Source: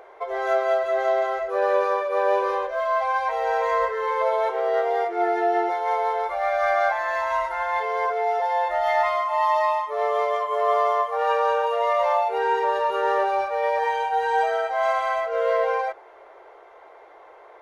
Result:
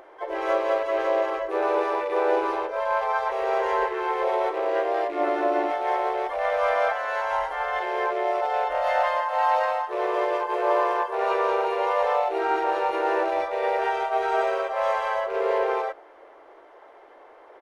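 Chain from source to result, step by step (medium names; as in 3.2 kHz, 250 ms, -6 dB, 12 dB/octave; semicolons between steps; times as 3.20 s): rattle on loud lows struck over -42 dBFS, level -31 dBFS; harmony voices -4 st -15 dB, -3 st -1 dB, +7 st -11 dB; trim -4.5 dB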